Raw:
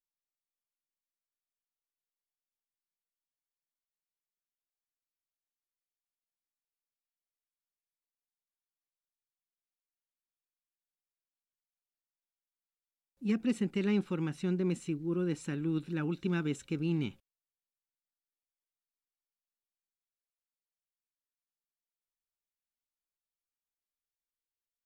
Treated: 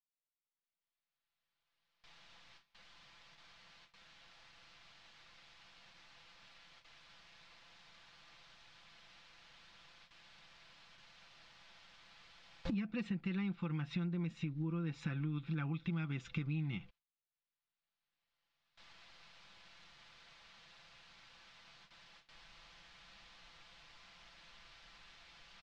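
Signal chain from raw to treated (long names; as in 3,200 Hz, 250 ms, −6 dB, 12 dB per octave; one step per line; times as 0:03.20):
gliding playback speed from 111% → 83%
camcorder AGC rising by 15 dB per second
noise gate with hold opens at −57 dBFS
low-pass filter 4,300 Hz 24 dB per octave
parametric band 370 Hz −11 dB 1.1 octaves
comb filter 5.9 ms, depth 49%
downward compressor 12 to 1, threshold −46 dBFS, peak gain reduction 19 dB
level +10.5 dB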